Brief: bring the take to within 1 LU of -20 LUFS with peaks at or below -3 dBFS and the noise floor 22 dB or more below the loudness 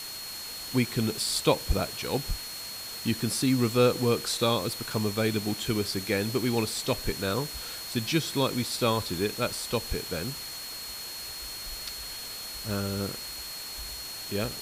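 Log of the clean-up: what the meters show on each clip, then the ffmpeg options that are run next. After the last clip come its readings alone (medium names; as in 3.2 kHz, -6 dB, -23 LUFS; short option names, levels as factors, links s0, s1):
steady tone 4.3 kHz; tone level -39 dBFS; noise floor -39 dBFS; noise floor target -52 dBFS; loudness -29.5 LUFS; peak level -10.0 dBFS; loudness target -20.0 LUFS
-> -af "bandreject=f=4300:w=30"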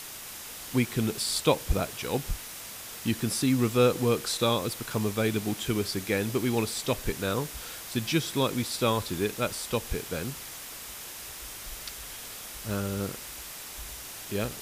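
steady tone not found; noise floor -42 dBFS; noise floor target -52 dBFS
-> -af "afftdn=nr=10:nf=-42"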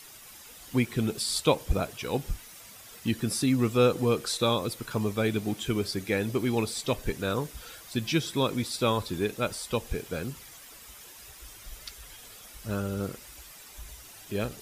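noise floor -49 dBFS; noise floor target -51 dBFS
-> -af "afftdn=nr=6:nf=-49"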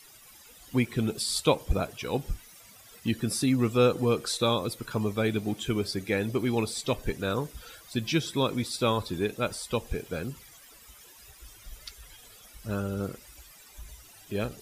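noise floor -53 dBFS; loudness -29.0 LUFS; peak level -10.0 dBFS; loudness target -20.0 LUFS
-> -af "volume=2.82,alimiter=limit=0.708:level=0:latency=1"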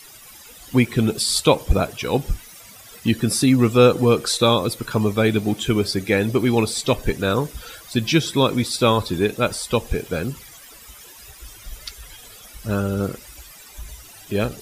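loudness -20.5 LUFS; peak level -3.0 dBFS; noise floor -44 dBFS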